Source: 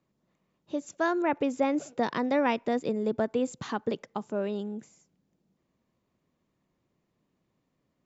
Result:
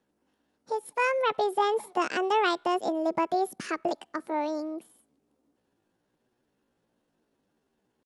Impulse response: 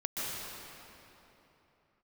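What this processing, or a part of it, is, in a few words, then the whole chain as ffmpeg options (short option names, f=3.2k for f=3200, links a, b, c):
chipmunk voice: -af "asetrate=66075,aresample=44100,atempo=0.66742,volume=1dB"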